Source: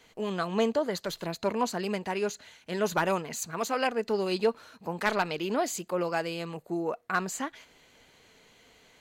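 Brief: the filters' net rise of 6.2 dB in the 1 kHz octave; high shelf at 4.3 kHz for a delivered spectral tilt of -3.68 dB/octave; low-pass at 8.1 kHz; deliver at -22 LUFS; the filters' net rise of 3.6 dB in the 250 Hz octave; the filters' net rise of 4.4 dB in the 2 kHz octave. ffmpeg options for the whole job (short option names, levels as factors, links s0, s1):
-af "lowpass=8100,equalizer=f=250:t=o:g=4.5,equalizer=f=1000:t=o:g=7,equalizer=f=2000:t=o:g=3.5,highshelf=f=4300:g=-3,volume=1.78"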